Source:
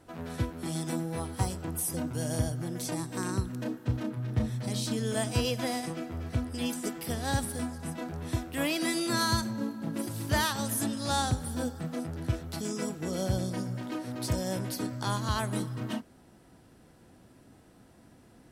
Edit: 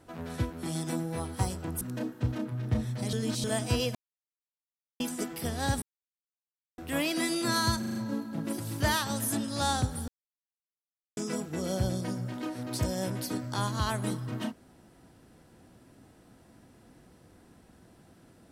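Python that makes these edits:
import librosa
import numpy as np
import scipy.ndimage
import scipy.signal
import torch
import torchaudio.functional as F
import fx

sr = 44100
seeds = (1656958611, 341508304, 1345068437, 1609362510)

y = fx.edit(x, sr, fx.cut(start_s=1.81, length_s=1.65),
    fx.reverse_span(start_s=4.78, length_s=0.31),
    fx.silence(start_s=5.6, length_s=1.05),
    fx.silence(start_s=7.47, length_s=0.96),
    fx.stutter(start_s=9.44, slice_s=0.04, count=5),
    fx.silence(start_s=11.57, length_s=1.09), tone=tone)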